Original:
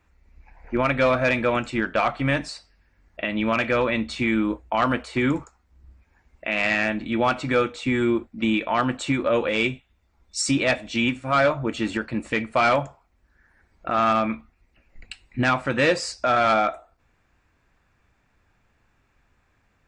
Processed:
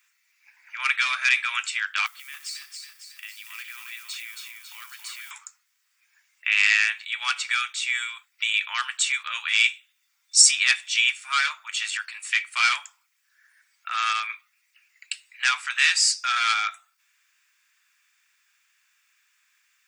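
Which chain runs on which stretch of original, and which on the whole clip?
2.06–5.31 s: compression 3:1, threshold -43 dBFS + two-band feedback delay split 330 Hz, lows 120 ms, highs 275 ms, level -5 dB + companded quantiser 6-bit
whole clip: Bessel high-pass 2 kHz, order 8; tilt EQ +3.5 dB/octave; band-stop 4.1 kHz, Q 15; trim +3 dB

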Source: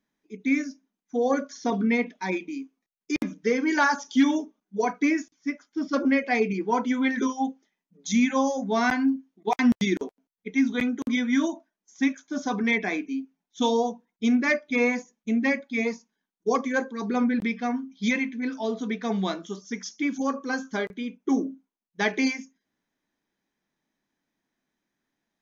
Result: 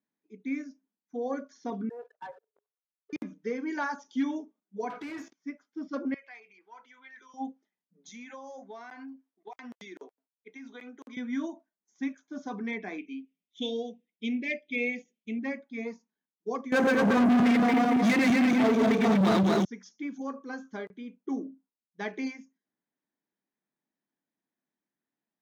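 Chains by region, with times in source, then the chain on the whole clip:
1.89–3.13 s: level held to a coarse grid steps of 16 dB + brick-wall FIR band-pass 410–1800 Hz + waveshaping leveller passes 2
4.90–5.33 s: compression 3:1, threshold -41 dBFS + overdrive pedal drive 33 dB, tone 3 kHz, clips at -21.5 dBFS + doubling 18 ms -13.5 dB
6.14–7.34 s: compression 2.5:1, threshold -29 dBFS + high-pass 1.4 kHz + treble shelf 5.5 kHz -9 dB
8.09–11.17 s: high-pass 470 Hz + compression 12:1, threshold -30 dBFS
12.98–15.39 s: Chebyshev band-stop 540–2600 Hz + high-order bell 2.6 kHz +12.5 dB 1.1 oct
16.72–19.65 s: backward echo that repeats 113 ms, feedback 65%, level -0.5 dB + waveshaping leveller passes 5
whole clip: high-pass 130 Hz; treble shelf 2.3 kHz -9 dB; trim -8.5 dB

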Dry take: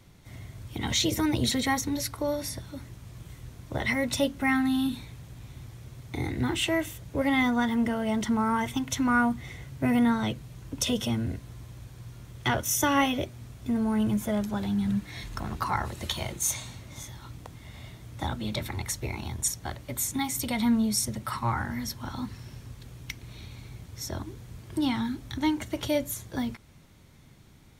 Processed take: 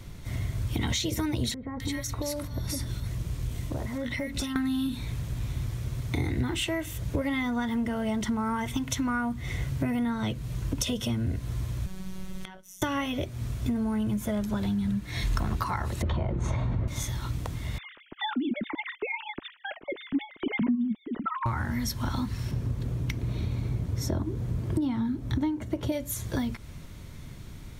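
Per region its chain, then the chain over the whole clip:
1.54–4.56 s: compression 4:1, threshold -38 dBFS + bands offset in time lows, highs 260 ms, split 1.4 kHz
11.86–12.82 s: robot voice 188 Hz + inverted gate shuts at -26 dBFS, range -27 dB
16.02–16.88 s: low-pass 1 kHz + level flattener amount 70%
17.78–21.46 s: formants replaced by sine waves + resonant low shelf 390 Hz +7.5 dB, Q 1.5
22.51–25.92 s: high-pass 140 Hz 6 dB/octave + tilt shelf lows +8 dB, about 1.1 kHz
whole clip: band-stop 800 Hz, Q 12; compression 6:1, threshold -36 dBFS; bass shelf 76 Hz +11 dB; trim +8 dB

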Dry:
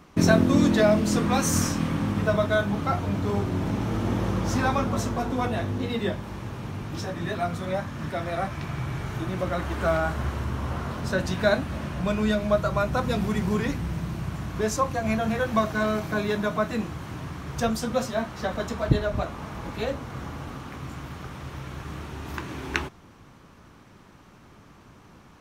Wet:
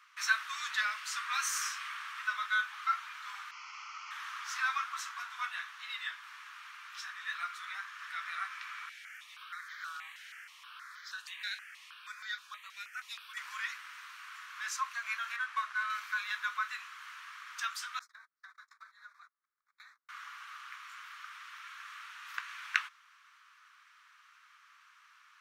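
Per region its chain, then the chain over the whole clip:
3.51–4.11 s: one-bit delta coder 32 kbps, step -35.5 dBFS + static phaser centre 2.5 kHz, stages 8 + tape noise reduction on one side only decoder only
8.89–13.37 s: high-order bell 860 Hz -8.5 dB + stepped phaser 6.3 Hz 300–2700 Hz
15.36–15.90 s: CVSD coder 64 kbps + high-pass 420 Hz + tilt EQ -3 dB/octave
17.99–20.09 s: gate -30 dBFS, range -48 dB + Butterworth band-stop 2.9 kHz, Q 1.9 + compression 12:1, threshold -38 dBFS
whole clip: steep high-pass 1.2 kHz 48 dB/octave; treble shelf 4.7 kHz -10.5 dB

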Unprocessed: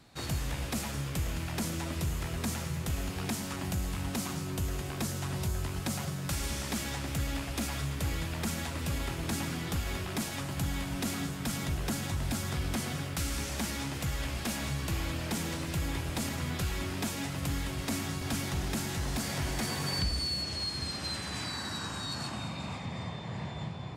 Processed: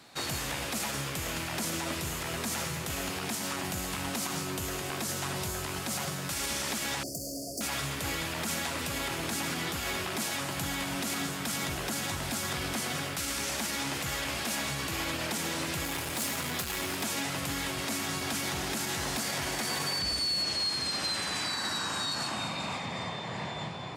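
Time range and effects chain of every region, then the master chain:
7.03–7.61 s: bass shelf 110 Hz -11 dB + hard clipper -35.5 dBFS + brick-wall FIR band-stop 740–4400 Hz
15.85–17.03 s: treble shelf 11 kHz +9.5 dB + hard clipper -32.5 dBFS
whole clip: high-pass 450 Hz 6 dB/octave; peak limiter -30.5 dBFS; trim +7.5 dB

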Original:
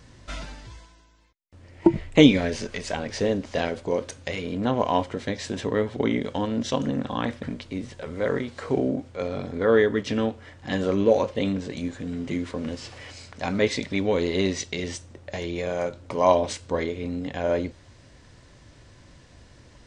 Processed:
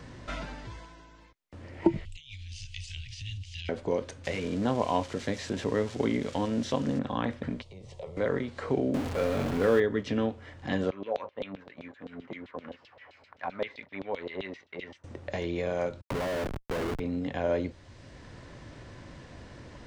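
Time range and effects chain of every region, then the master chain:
2.05–3.69 s: Chebyshev band-stop 100–2800 Hz, order 4 + compressor with a negative ratio -39 dBFS
4.24–6.99 s: zero-crossing glitches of -24.5 dBFS + low-pass 7.8 kHz 24 dB/octave
7.62–8.17 s: compression 2:1, threshold -40 dBFS + static phaser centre 640 Hz, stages 4 + three bands expanded up and down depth 40%
8.94–9.80 s: jump at every zero crossing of -25 dBFS + doubling 30 ms -12.5 dB
10.90–15.04 s: tone controls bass +6 dB, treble -5 dB + gate -31 dBFS, range -8 dB + LFO band-pass saw down 7.7 Hz 570–3900 Hz
16.01–17.00 s: low-pass that closes with the level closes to 500 Hz, closed at -16.5 dBFS + bass shelf 300 Hz -6.5 dB + Schmitt trigger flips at -34 dBFS
whole clip: treble shelf 4.6 kHz -9.5 dB; three bands compressed up and down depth 40%; trim -3 dB

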